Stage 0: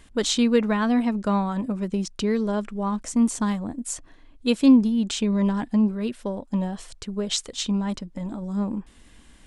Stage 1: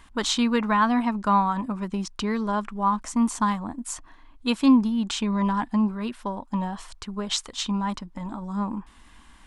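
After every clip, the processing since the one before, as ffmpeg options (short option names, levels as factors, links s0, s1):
-af "equalizer=f=125:t=o:w=1:g=-5,equalizer=f=500:t=o:w=1:g=-9,equalizer=f=1000:t=o:w=1:g=11,equalizer=f=8000:t=o:w=1:g=-3"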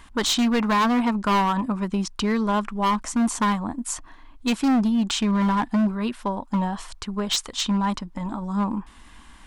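-af "asoftclip=type=hard:threshold=0.0891,volume=1.58"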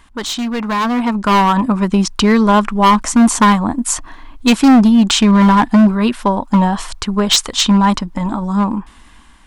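-af "dynaudnorm=f=500:g=5:m=3.98"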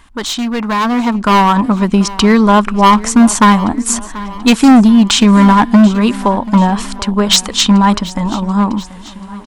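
-af "aecho=1:1:735|1470|2205|2940:0.126|0.0655|0.034|0.0177,volume=1.33"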